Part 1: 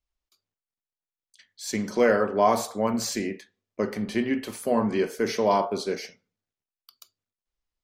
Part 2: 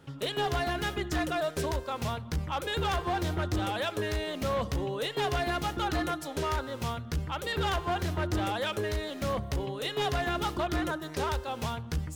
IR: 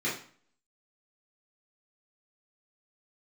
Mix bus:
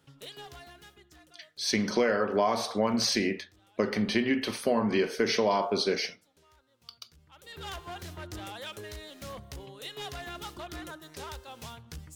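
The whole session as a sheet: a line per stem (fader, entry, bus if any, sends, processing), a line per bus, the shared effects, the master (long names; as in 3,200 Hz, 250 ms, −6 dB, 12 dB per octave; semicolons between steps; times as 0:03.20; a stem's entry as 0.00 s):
+2.5 dB, 0.00 s, no send, Savitzky-Golay smoothing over 15 samples
−12.0 dB, 0.00 s, no send, automatic ducking −22 dB, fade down 1.60 s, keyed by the first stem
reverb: not used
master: high-shelf EQ 2,500 Hz +9.5 dB; downward compressor 6 to 1, threshold −22 dBFS, peak gain reduction 10.5 dB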